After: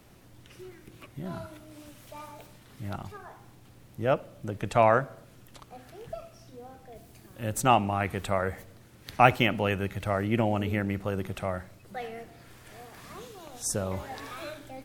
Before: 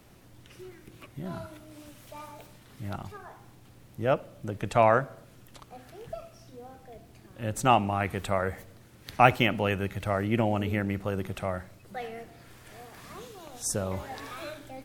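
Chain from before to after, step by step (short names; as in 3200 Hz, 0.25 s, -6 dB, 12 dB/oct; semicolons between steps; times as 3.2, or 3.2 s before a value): 6.95–7.61 high shelf 5800 Hz -> 10000 Hz +9.5 dB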